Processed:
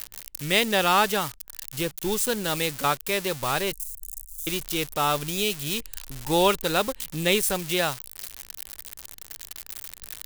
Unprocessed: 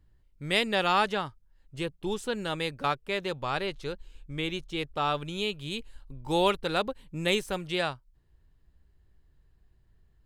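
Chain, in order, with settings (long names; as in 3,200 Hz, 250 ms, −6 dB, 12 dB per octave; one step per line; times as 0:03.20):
spike at every zero crossing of −24 dBFS
0:03.73–0:04.47: inverse Chebyshev band-stop filter 150–1,500 Hz, stop band 80 dB
level +4 dB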